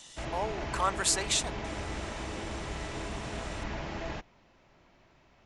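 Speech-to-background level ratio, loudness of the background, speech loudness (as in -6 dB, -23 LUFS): 7.5 dB, -38.0 LUFS, -30.5 LUFS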